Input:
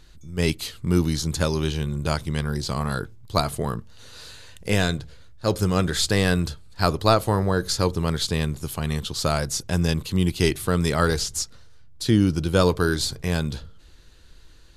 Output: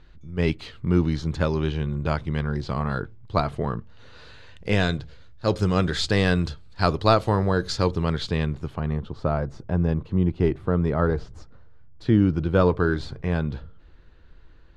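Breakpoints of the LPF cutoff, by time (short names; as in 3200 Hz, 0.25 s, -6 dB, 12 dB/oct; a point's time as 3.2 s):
4.26 s 2500 Hz
4.95 s 4400 Hz
7.71 s 4400 Hz
8.57 s 2500 Hz
8.97 s 1100 Hz
11.38 s 1100 Hz
12.2 s 1900 Hz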